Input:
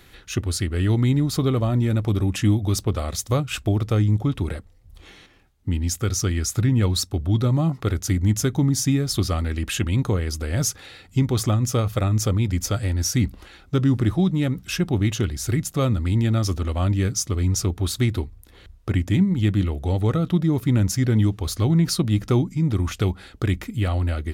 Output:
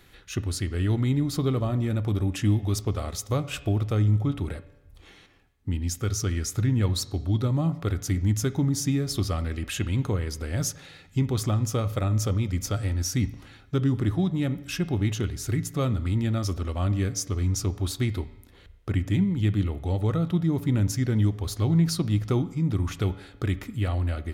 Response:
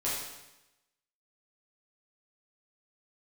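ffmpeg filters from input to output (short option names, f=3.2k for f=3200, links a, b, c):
-filter_complex "[0:a]asplit=2[a][b];[1:a]atrim=start_sample=2205,lowpass=3.3k[c];[b][c]afir=irnorm=-1:irlink=0,volume=-18dB[d];[a][d]amix=inputs=2:normalize=0,volume=-5.5dB"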